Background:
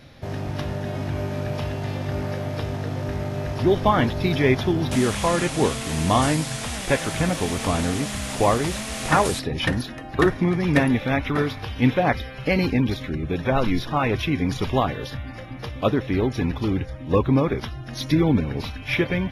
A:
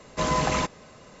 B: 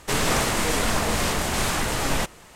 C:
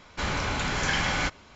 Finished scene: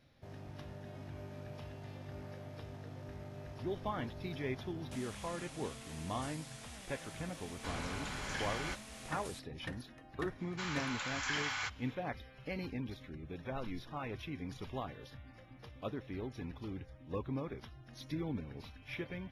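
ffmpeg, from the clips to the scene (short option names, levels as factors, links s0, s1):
-filter_complex "[3:a]asplit=2[s0][s1];[0:a]volume=0.1[s2];[s1]highpass=f=890:w=0.5412,highpass=f=890:w=1.3066[s3];[s0]atrim=end=1.55,asetpts=PTS-STARTPTS,volume=0.2,afade=t=in:d=0.004:c=hsin,afade=t=out:st=1.546:d=0.004:c=hsin,adelay=328986S[s4];[s3]atrim=end=1.55,asetpts=PTS-STARTPTS,volume=0.335,afade=t=in:d=0.004:c=hsin,afade=t=out:st=1.546:d=0.004:c=hsin,adelay=10400[s5];[s2][s4][s5]amix=inputs=3:normalize=0"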